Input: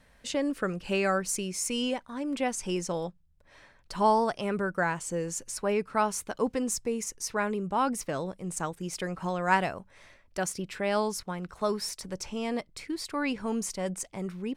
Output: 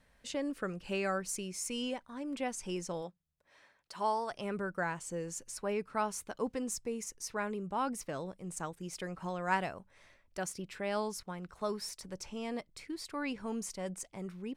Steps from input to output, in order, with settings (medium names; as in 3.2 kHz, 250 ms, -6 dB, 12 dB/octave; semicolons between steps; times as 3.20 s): 3.01–4.30 s: high-pass 200 Hz -> 690 Hz 6 dB/octave; trim -7 dB